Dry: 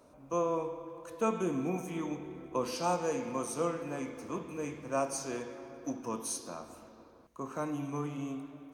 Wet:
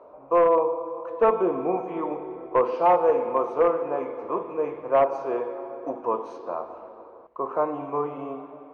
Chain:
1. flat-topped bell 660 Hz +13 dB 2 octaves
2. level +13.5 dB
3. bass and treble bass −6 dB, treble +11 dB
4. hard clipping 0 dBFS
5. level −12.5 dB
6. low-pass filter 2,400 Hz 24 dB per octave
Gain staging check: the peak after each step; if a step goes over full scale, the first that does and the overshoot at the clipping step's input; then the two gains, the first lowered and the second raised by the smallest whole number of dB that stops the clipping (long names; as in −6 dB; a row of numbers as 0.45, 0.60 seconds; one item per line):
−8.0, +5.5, +5.5, 0.0, −12.5, −11.5 dBFS
step 2, 5.5 dB
step 2 +7.5 dB, step 5 −6.5 dB